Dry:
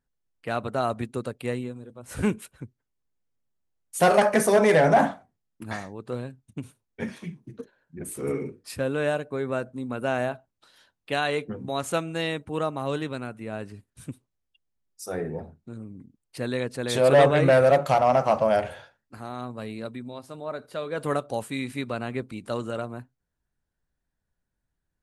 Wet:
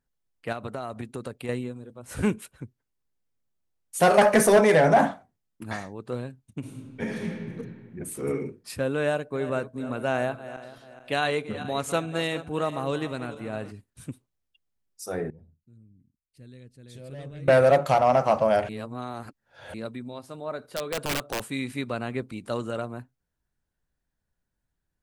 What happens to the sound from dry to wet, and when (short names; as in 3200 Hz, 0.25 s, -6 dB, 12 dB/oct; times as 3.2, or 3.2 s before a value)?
0.52–1.49 compressor, threshold -29 dBFS
4.18–4.61 sample leveller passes 1
6.59–7.58 reverb throw, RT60 1.9 s, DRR -2 dB
9.07–13.71 regenerating reverse delay 0.214 s, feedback 58%, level -13 dB
15.3–17.48 passive tone stack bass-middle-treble 10-0-1
18.69–19.74 reverse
20.67–21.43 wrapped overs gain 21.5 dB